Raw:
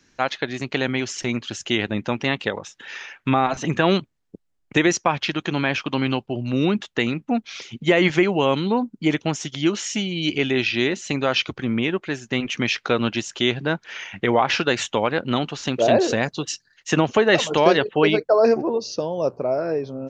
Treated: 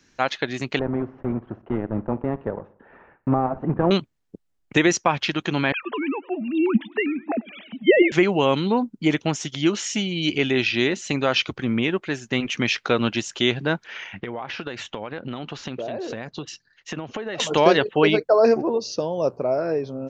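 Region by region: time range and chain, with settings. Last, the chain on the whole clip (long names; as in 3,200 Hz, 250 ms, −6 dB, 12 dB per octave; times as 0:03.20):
0:00.79–0:03.91: one scale factor per block 3 bits + Bessel low-pass filter 770 Hz, order 4 + repeating echo 61 ms, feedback 55%, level −20 dB
0:05.72–0:08.12: three sine waves on the formant tracks + feedback echo with a swinging delay time 101 ms, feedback 62%, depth 197 cents, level −23 dB
0:13.87–0:17.40: downward compressor 10 to 1, threshold −26 dBFS + high-frequency loss of the air 120 metres
whole clip: no processing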